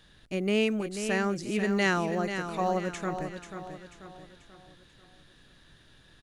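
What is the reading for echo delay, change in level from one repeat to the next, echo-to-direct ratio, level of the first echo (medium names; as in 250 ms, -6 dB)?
488 ms, -7.0 dB, -7.5 dB, -8.5 dB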